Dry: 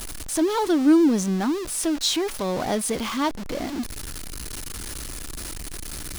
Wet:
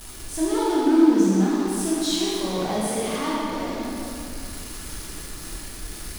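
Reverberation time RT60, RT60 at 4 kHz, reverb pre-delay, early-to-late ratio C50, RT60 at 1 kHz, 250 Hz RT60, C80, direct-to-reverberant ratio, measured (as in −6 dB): 2.7 s, 1.9 s, 23 ms, −4.0 dB, 2.7 s, 2.6 s, −2.0 dB, −7.5 dB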